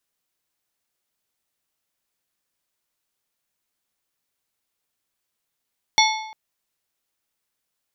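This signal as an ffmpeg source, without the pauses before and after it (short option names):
-f lavfi -i "aevalsrc='0.178*pow(10,-3*t/0.87)*sin(2*PI*873*t)+0.158*pow(10,-3*t/0.661)*sin(2*PI*2182.5*t)+0.141*pow(10,-3*t/0.574)*sin(2*PI*3492*t)+0.126*pow(10,-3*t/0.537)*sin(2*PI*4365*t)+0.112*pow(10,-3*t/0.496)*sin(2*PI*5674.5*t)':d=0.35:s=44100"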